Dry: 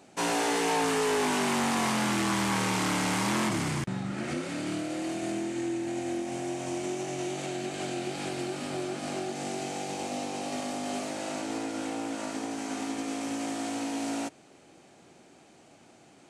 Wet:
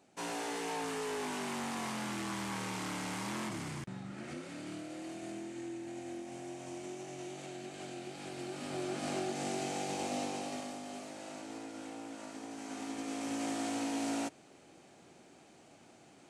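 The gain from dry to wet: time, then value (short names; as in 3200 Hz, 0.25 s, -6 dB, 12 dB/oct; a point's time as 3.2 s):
8.22 s -11 dB
9.01 s -2.5 dB
10.24 s -2.5 dB
10.88 s -11.5 dB
12.36 s -11.5 dB
13.47 s -3 dB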